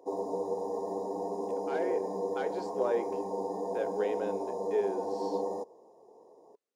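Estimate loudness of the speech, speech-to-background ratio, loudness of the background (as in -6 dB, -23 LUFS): -35.5 LUFS, -0.5 dB, -35.0 LUFS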